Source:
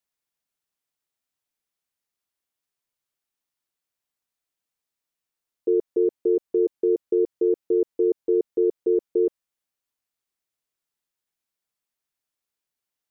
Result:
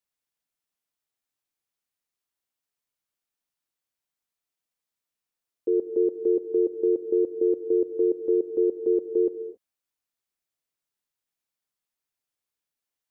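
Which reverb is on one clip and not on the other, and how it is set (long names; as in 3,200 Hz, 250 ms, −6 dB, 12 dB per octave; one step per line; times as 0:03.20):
reverb whose tail is shaped and stops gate 300 ms flat, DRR 9.5 dB
level −2.5 dB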